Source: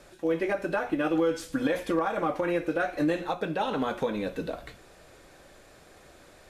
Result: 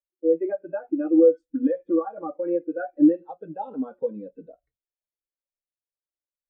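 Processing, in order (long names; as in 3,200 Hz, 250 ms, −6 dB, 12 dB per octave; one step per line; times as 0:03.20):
in parallel at −8 dB: bit reduction 6 bits
on the sum: every bin expanded away from the loudest bin 2.5 to 1
level +5 dB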